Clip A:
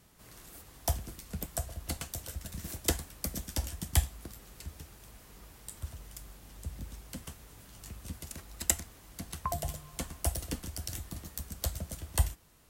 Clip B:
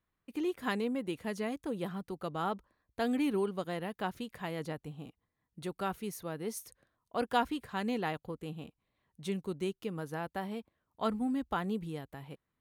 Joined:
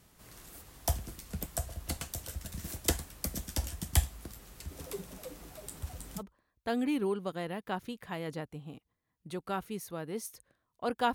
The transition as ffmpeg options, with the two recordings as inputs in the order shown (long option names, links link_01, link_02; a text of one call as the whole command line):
ffmpeg -i cue0.wav -i cue1.wav -filter_complex "[0:a]asplit=3[link_01][link_02][link_03];[link_01]afade=type=out:start_time=4.7:duration=0.02[link_04];[link_02]asplit=8[link_05][link_06][link_07][link_08][link_09][link_10][link_11][link_12];[link_06]adelay=320,afreqshift=110,volume=-4.5dB[link_13];[link_07]adelay=640,afreqshift=220,volume=-9.9dB[link_14];[link_08]adelay=960,afreqshift=330,volume=-15.2dB[link_15];[link_09]adelay=1280,afreqshift=440,volume=-20.6dB[link_16];[link_10]adelay=1600,afreqshift=550,volume=-25.9dB[link_17];[link_11]adelay=1920,afreqshift=660,volume=-31.3dB[link_18];[link_12]adelay=2240,afreqshift=770,volume=-36.6dB[link_19];[link_05][link_13][link_14][link_15][link_16][link_17][link_18][link_19]amix=inputs=8:normalize=0,afade=type=in:start_time=4.7:duration=0.02,afade=type=out:start_time=6.23:duration=0.02[link_20];[link_03]afade=type=in:start_time=6.23:duration=0.02[link_21];[link_04][link_20][link_21]amix=inputs=3:normalize=0,apad=whole_dur=11.14,atrim=end=11.14,atrim=end=6.23,asetpts=PTS-STARTPTS[link_22];[1:a]atrim=start=2.49:end=7.46,asetpts=PTS-STARTPTS[link_23];[link_22][link_23]acrossfade=duration=0.06:curve1=tri:curve2=tri" out.wav